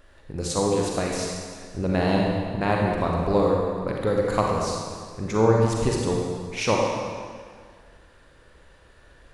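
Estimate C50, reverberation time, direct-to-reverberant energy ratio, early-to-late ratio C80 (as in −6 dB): 0.0 dB, 1.9 s, −1.5 dB, 1.5 dB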